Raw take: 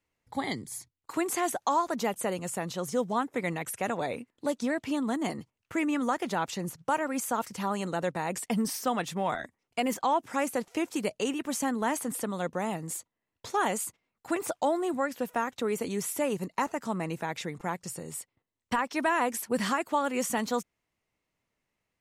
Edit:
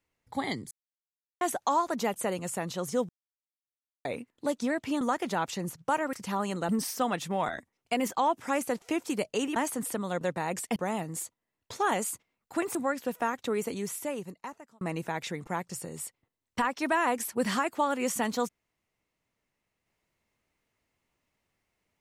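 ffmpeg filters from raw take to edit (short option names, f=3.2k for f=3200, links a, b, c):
-filter_complex "[0:a]asplit=13[a][b][c][d][e][f][g][h][i][j][k][l][m];[a]atrim=end=0.71,asetpts=PTS-STARTPTS,afade=t=out:st=0.706:d=0.004:c=hsin[n];[b]atrim=start=0.71:end=1.41,asetpts=PTS-STARTPTS,volume=0[o];[c]atrim=start=1.41:end=3.09,asetpts=PTS-STARTPTS,afade=t=in:d=0.004:c=hsin,afade=t=out:st=1.676:d=0.004:c=hsin[p];[d]atrim=start=3.09:end=4.05,asetpts=PTS-STARTPTS,volume=0[q];[e]atrim=start=4.05:end=5.012,asetpts=PTS-STARTPTS,afade=t=in:d=0.004:c=hsin[r];[f]atrim=start=6.008:end=7.132[s];[g]atrim=start=7.438:end=8.002[t];[h]atrim=start=8.548:end=11.422[u];[i]atrim=start=11.848:end=12.502[v];[j]atrim=start=7.998:end=8.552[w];[k]atrim=start=12.498:end=14.492[x];[l]atrim=start=14.888:end=16.95,asetpts=PTS-STARTPTS,afade=t=out:st=0.772:d=1.29[y];[m]atrim=start=16.95,asetpts=PTS-STARTPTS,afade=t=in:d=0.004:c=hsin[z];[n][o][p][q][r]concat=n=5:v=0:a=1[aa];[aa][s]acrossfade=d=0.004:c1=hsin:c2=hsin[ab];[ab][t]acrossfade=d=0.004:c1=hsin:c2=hsin[ac];[ac][u]acrossfade=d=0.004:c1=hsin:c2=hsin[ad];[ad][v]acrossfade=d=0.004:c1=hsin:c2=hsin[ae];[ae][w]acrossfade=d=0.004:c1=hsin:c2=hsin[af];[af][x]acrossfade=d=0.004:c1=hsin:c2=hsin[ag];[y][z]concat=n=2:v=0:a=1[ah];[ag][ah]acrossfade=d=0.004:c1=hsin:c2=hsin"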